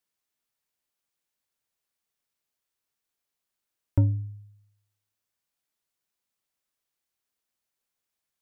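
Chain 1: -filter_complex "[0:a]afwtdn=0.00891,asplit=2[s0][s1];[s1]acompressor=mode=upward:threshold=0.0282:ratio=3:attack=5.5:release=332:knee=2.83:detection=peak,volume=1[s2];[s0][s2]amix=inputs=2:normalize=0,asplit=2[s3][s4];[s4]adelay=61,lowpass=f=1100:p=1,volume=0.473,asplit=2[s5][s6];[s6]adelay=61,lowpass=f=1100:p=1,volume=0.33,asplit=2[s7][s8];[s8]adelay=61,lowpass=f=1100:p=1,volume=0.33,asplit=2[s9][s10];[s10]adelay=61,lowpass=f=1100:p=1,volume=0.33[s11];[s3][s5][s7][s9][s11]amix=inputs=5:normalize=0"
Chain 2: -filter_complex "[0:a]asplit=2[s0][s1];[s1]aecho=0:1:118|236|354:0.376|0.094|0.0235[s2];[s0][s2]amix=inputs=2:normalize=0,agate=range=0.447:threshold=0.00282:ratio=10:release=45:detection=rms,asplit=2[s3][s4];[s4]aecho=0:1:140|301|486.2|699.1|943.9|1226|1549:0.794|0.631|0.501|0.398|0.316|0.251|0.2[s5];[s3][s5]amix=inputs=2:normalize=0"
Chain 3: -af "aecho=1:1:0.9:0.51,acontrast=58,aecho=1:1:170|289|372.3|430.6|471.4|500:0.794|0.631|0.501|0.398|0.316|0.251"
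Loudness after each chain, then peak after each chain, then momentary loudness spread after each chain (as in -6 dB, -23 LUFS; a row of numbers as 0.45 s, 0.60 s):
-23.0 LUFS, -28.0 LUFS, -17.5 LUFS; -5.5 dBFS, -11.5 dBFS, -5.0 dBFS; 19 LU, 13 LU, 11 LU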